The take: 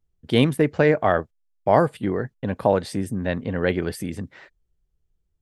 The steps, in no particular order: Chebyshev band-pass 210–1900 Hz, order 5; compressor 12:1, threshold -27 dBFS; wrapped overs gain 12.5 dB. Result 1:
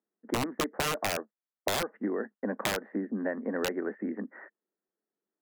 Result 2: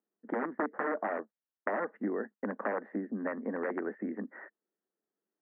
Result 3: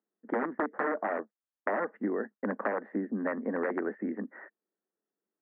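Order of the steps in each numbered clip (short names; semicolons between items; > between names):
Chebyshev band-pass > wrapped overs > compressor; wrapped overs > compressor > Chebyshev band-pass; wrapped overs > Chebyshev band-pass > compressor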